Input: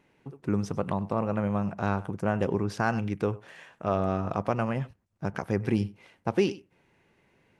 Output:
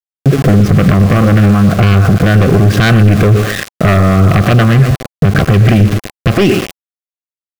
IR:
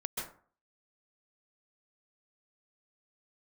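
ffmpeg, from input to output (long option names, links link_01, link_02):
-filter_complex "[0:a]afftdn=noise_reduction=14:noise_floor=-48,lowpass=2700,aemphasis=mode=reproduction:type=bsi,acrossover=split=1600[link_01][link_02];[link_01]acompressor=threshold=-30dB:ratio=8[link_03];[link_03][link_02]amix=inputs=2:normalize=0,aecho=1:1:122|244|366|488:0.168|0.0705|0.0296|0.0124,aeval=exprs='val(0)*gte(abs(val(0)),0.00422)':channel_layout=same,acontrast=87,aeval=exprs='0.178*sin(PI/2*2*val(0)/0.178)':channel_layout=same,asuperstop=centerf=910:order=4:qfactor=4.3,alimiter=level_in=19dB:limit=-1dB:release=50:level=0:latency=1,volume=-1dB"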